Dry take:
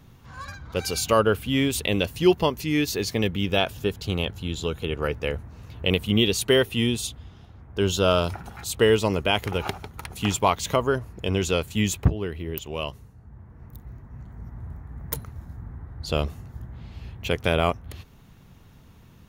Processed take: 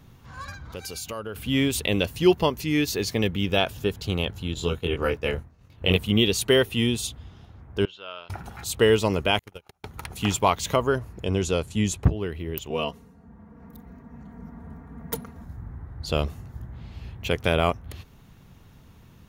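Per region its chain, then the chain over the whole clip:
0.64–1.36 s: treble shelf 6.3 kHz +5 dB + compression 3:1, threshold -35 dBFS
4.54–5.97 s: expander -33 dBFS + doubling 23 ms -3 dB
7.85–8.30 s: low-pass 2.7 kHz 24 dB/octave + differentiator
9.39–9.84 s: treble shelf 4.9 kHz +9.5 dB + compression 3:1, threshold -29 dBFS + gate -30 dBFS, range -36 dB
11.24–12.04 s: low-pass 11 kHz 24 dB/octave + peaking EQ 2.4 kHz -5 dB 1.9 oct
12.70–15.44 s: high-pass 150 Hz + tilt EQ -1.5 dB/octave + comb 4.3 ms, depth 100%
whole clip: none

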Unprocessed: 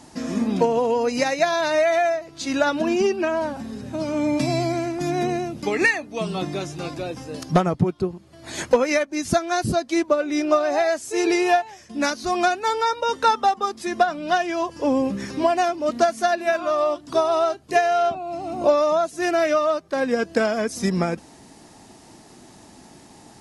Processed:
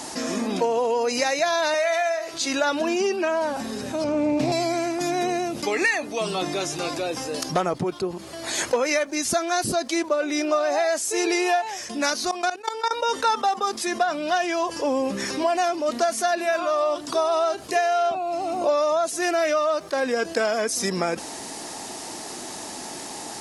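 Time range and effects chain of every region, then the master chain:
1.74–2.34 s: high-pass 740 Hz 6 dB/octave + flutter echo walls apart 9.2 m, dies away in 0.25 s
4.04–4.52 s: tilt EQ -3 dB/octave + loudspeaker Doppler distortion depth 0.16 ms
12.31–12.91 s: expander -21 dBFS + level held to a coarse grid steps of 20 dB
whole clip: tone controls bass -14 dB, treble +4 dB; level flattener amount 50%; trim -5 dB

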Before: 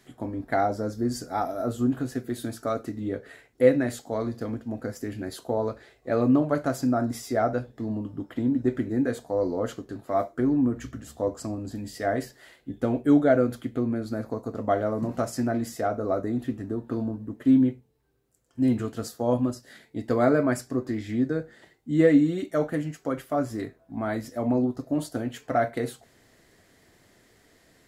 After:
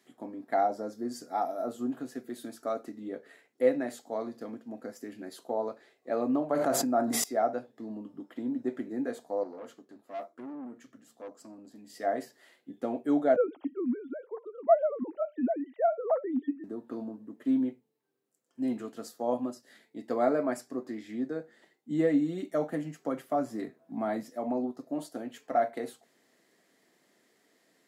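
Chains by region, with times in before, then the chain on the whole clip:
6.50–7.24 s: peaking EQ 5.3 kHz -5 dB 0.4 oct + level flattener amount 100%
9.43–11.90 s: flange 2 Hz, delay 3.4 ms, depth 1.2 ms, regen -83% + valve stage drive 30 dB, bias 0.5
13.36–16.64 s: formants replaced by sine waves + bass shelf 240 Hz +10.5 dB
21.90–24.23 s: tone controls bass +7 dB, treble +1 dB + three bands compressed up and down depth 40%
whole clip: high-pass 190 Hz 24 dB/octave; band-stop 1.5 kHz, Q 23; dynamic bell 750 Hz, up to +7 dB, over -40 dBFS, Q 1.9; trim -8 dB

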